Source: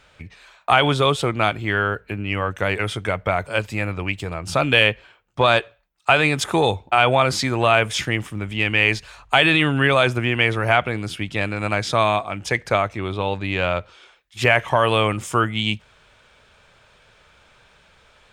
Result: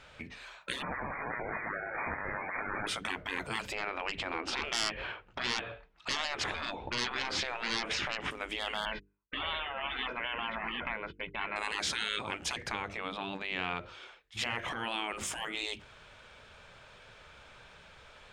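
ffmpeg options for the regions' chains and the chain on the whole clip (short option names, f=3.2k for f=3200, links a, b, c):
-filter_complex "[0:a]asettb=1/sr,asplit=3[a][b][c];[a]atrim=end=0.824[d];[b]atrim=start=0.82:end=2.87,asetpts=PTS-STARTPTS,afade=t=in:d=0.004:c=qsin,afade=t=out:st=2.046:d=0.004:c=qsin,aeval=exprs='val(0)+0.5*0.0668*sgn(val(0))':c=same,highpass=91,lowpass=f=2.1k:t=q:w=0.5098,lowpass=f=2.1k:t=q:w=0.6013,lowpass=f=2.1k:t=q:w=0.9,lowpass=f=2.1k:t=q:w=2.563,afreqshift=-2500[e];[c]atrim=start=2.866[f];[d][e]acrossfade=d=0.004:c1=hsin:c2=qsin[g];[g][f]acrossfade=d=0.004:c1=qsin:c2=hsin,asettb=1/sr,asplit=3[h][i][j];[h]atrim=end=3.724[k];[i]atrim=start=3.72:end=8.31,asetpts=PTS-STARTPTS,afade=t=in:d=0.004:c=qsin,afade=t=out:st=4.586:d=0.004:c=qsin,lowpass=3.1k,aeval=exprs='0.794*sin(PI/2*2.51*val(0)/0.794)':c=same,acompressor=threshold=-26dB:ratio=3:attack=3.2:release=140:knee=1:detection=peak[l];[j]atrim=start=8.306[m];[k][l]acrossfade=d=0.004:c1=hsin:c2=qsin[n];[n][m]acrossfade=d=0.004:c1=qsin:c2=hsin,asettb=1/sr,asplit=3[o][p][q];[o]atrim=end=8.854[r];[p]atrim=start=8.85:end=11.56,asetpts=PTS-STARTPTS,afade=t=in:d=0.004:c=qsin,afade=t=out:st=2.706:d=0.004:c=qsin,lowpass=f=2.4k:w=0.5412,lowpass=f=2.4k:w=1.3066,agate=range=-48dB:threshold=-34dB:ratio=16:release=100:detection=peak,aecho=1:1:2:0.56,atrim=end_sample=119511[s];[q]atrim=start=11.556[t];[r][s]acrossfade=d=0.004:c1=hsin:c2=qsin[u];[u][t]acrossfade=d=0.004:c1=qsin:c2=hsin,asettb=1/sr,asplit=3[v][w][x];[v]atrim=end=12.674[y];[w]atrim=start=12.67:end=15.17,asetpts=PTS-STARTPTS,afade=t=in:d=0.004:c=qsin,afade=t=out:st=2.496:d=0.004:c=qsin,highshelf=f=6.1k:g=-5,acompressor=threshold=-26dB:ratio=3:attack=3.2:release=140:knee=1:detection=peak[z];[x]atrim=start=15.166[aa];[y][z]acrossfade=d=0.004:c1=hsin:c2=qsin[ab];[ab][aa]acrossfade=d=0.004:c1=qsin:c2=hsin,afftfilt=real='re*lt(hypot(re,im),0.1)':imag='im*lt(hypot(re,im),0.1)':win_size=1024:overlap=0.75,highshelf=f=9.3k:g=-9,bandreject=f=50:t=h:w=6,bandreject=f=100:t=h:w=6,bandreject=f=150:t=h:w=6,bandreject=f=200:t=h:w=6,bandreject=f=250:t=h:w=6,bandreject=f=300:t=h:w=6,bandreject=f=350:t=h:w=6,bandreject=f=400:t=h:w=6,bandreject=f=450:t=h:w=6"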